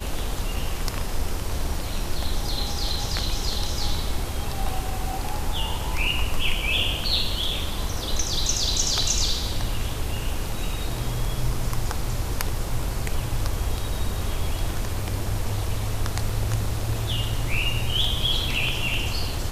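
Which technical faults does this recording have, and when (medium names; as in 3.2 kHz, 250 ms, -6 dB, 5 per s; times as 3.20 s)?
16.29 s: dropout 4.1 ms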